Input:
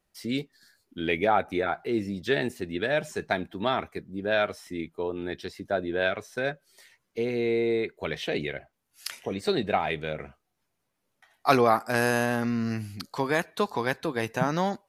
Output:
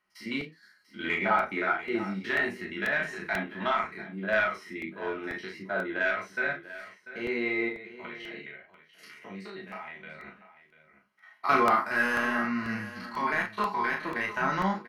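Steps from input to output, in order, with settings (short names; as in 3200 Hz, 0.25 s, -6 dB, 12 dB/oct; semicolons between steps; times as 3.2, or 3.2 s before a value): stepped spectrum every 50 ms; passive tone stack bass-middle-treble 5-5-5; notch 3600 Hz, Q 6.5; 7.68–10.24 compressor 10:1, threshold -55 dBFS, peak gain reduction 17 dB; overdrive pedal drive 17 dB, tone 1400 Hz, clips at -20.5 dBFS; flange 1.6 Hz, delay 9.9 ms, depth 5.2 ms, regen +62%; doubler 37 ms -5 dB; echo 0.692 s -15 dB; reverb RT60 0.10 s, pre-delay 3 ms, DRR 3.5 dB; crackling interface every 0.49 s, samples 64, repeat, from 0.41; gain +5 dB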